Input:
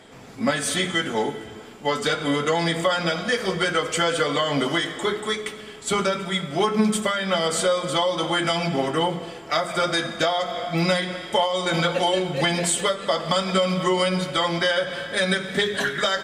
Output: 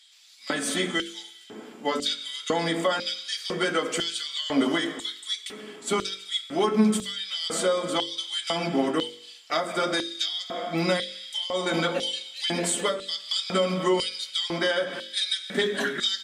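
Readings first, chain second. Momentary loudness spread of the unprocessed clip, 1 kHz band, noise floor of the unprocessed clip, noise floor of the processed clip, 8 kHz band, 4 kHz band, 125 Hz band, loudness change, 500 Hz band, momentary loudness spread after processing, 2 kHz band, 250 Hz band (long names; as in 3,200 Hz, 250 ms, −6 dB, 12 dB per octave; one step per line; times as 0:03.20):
5 LU, −7.0 dB, −40 dBFS, −48 dBFS, −3.5 dB, −1.5 dB, −8.0 dB, −4.0 dB, −5.0 dB, 7 LU, −6.0 dB, −2.5 dB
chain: auto-filter high-pass square 1 Hz 250–3,900 Hz
hum removal 48.16 Hz, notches 12
level −4 dB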